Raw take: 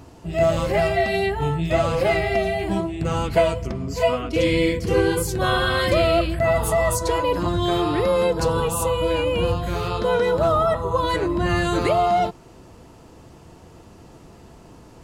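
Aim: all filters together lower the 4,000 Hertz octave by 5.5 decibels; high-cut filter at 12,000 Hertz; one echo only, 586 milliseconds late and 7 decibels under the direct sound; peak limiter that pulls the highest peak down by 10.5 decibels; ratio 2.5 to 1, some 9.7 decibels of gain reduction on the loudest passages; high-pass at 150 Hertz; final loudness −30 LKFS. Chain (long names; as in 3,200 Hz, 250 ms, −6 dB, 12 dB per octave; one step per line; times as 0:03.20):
high-pass filter 150 Hz
low-pass filter 12,000 Hz
parametric band 4,000 Hz −7.5 dB
downward compressor 2.5 to 1, threshold −29 dBFS
brickwall limiter −25.5 dBFS
single-tap delay 586 ms −7 dB
level +3 dB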